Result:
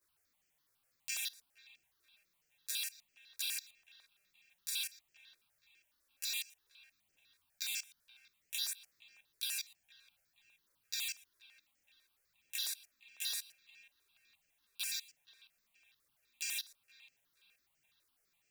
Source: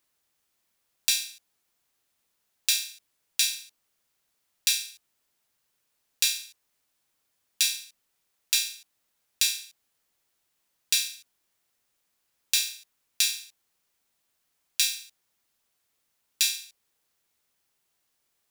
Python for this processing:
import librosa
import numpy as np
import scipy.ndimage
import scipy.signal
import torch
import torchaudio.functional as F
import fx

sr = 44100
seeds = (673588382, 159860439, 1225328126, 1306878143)

p1 = fx.dynamic_eq(x, sr, hz=5600.0, q=1.9, threshold_db=-36.0, ratio=4.0, max_db=-5)
p2 = fx.level_steps(p1, sr, step_db=21)
p3 = fx.chorus_voices(p2, sr, voices=2, hz=0.28, base_ms=14, depth_ms=3.9, mix_pct=70)
p4 = p3 + fx.echo_wet_bandpass(p3, sr, ms=474, feedback_pct=39, hz=1600.0, wet_db=-17.0, dry=0)
p5 = fx.phaser_held(p4, sr, hz=12.0, low_hz=800.0, high_hz=3700.0)
y = p5 * librosa.db_to_amplitude(10.0)